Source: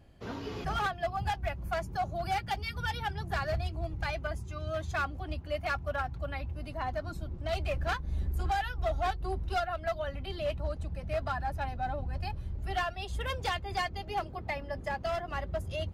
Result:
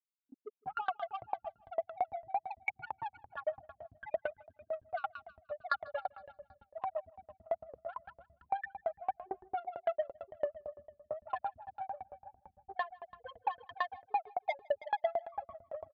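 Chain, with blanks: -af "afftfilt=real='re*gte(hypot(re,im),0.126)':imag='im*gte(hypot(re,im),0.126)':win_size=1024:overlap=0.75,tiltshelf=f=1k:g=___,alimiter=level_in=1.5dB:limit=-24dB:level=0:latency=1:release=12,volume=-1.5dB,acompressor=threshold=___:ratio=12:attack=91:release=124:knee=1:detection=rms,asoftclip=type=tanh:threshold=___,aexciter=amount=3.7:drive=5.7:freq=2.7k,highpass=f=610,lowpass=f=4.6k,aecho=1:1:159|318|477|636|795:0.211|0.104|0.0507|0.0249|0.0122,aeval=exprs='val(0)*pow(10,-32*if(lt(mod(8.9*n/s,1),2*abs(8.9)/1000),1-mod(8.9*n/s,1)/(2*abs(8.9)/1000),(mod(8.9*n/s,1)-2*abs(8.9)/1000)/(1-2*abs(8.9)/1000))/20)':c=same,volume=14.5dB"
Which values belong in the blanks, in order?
7.5, -38dB, -30dB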